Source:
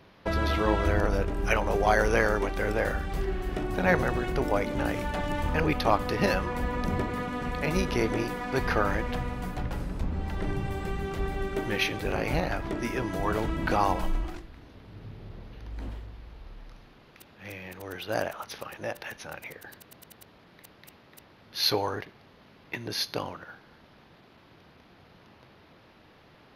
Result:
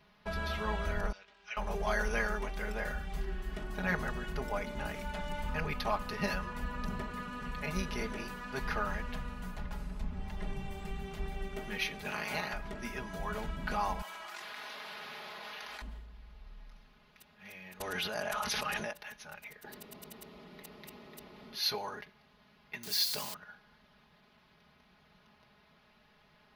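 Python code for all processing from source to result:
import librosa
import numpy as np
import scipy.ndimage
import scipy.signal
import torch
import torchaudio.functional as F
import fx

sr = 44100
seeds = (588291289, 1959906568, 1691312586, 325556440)

y = fx.chain(x, sr, fx.bandpass_q(hz=4100.0, q=1.3),
    fx.air_absorb(metres=110.0), at=(1.12, 1.57))
y = fx.spec_clip(y, sr, under_db=14, at=(12.04, 12.52), fade=0.02)
y = fx.highpass(y, sr, hz=110.0, slope=12, at=(12.04, 12.52), fade=0.02)
y = fx.chain(y, sr, fx.highpass(hz=780.0, slope=12),
    fx.env_flatten(amount_pct=100), at=(14.02, 15.82))
y = fx.chain(y, sr, fx.cheby1_lowpass(hz=12000.0, order=4),
    fx.env_flatten(amount_pct=100), at=(17.8, 18.91))
y = fx.chain(y, sr, fx.peak_eq(hz=340.0, db=13.5, octaves=1.3),
    fx.notch(hz=1600.0, q=8.2),
    fx.env_flatten(amount_pct=50), at=(19.63, 21.59))
y = fx.chain(y, sr, fx.crossing_spikes(level_db=-23.0),
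    fx.peak_eq(hz=4500.0, db=5.0, octaves=0.58), at=(22.83, 23.34))
y = fx.peak_eq(y, sr, hz=360.0, db=-8.0, octaves=1.5)
y = y + 0.81 * np.pad(y, (int(4.8 * sr / 1000.0), 0))[:len(y)]
y = y * 10.0 ** (-8.5 / 20.0)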